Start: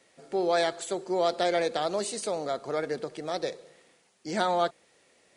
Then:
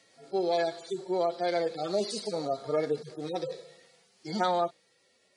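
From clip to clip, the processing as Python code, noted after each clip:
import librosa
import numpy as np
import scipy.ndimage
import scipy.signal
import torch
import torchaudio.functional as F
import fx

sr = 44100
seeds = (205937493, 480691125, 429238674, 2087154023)

y = fx.hpss_only(x, sr, part='harmonic')
y = fx.peak_eq(y, sr, hz=4400.0, db=7.5, octaves=0.84)
y = fx.rider(y, sr, range_db=3, speed_s=0.5)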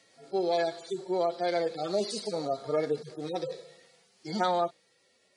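y = x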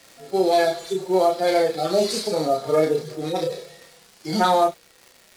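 y = fx.cvsd(x, sr, bps=64000)
y = fx.dmg_crackle(y, sr, seeds[0], per_s=130.0, level_db=-44.0)
y = fx.doubler(y, sr, ms=32.0, db=-3.5)
y = F.gain(torch.from_numpy(y), 8.0).numpy()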